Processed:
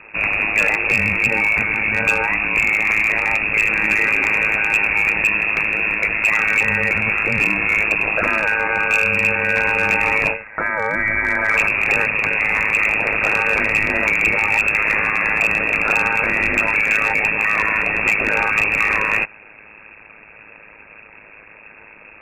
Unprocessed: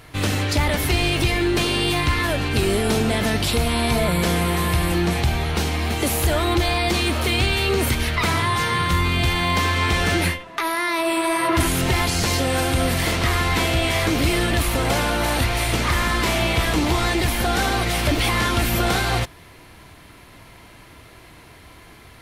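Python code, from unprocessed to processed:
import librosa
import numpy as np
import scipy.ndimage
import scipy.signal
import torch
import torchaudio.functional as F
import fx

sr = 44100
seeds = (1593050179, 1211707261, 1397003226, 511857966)

y = fx.freq_invert(x, sr, carrier_hz=2600)
y = y * np.sin(2.0 * np.pi * 53.0 * np.arange(len(y)) / sr)
y = np.clip(y, -10.0 ** (-14.0 / 20.0), 10.0 ** (-14.0 / 20.0))
y = F.gain(torch.from_numpy(y), 5.5).numpy()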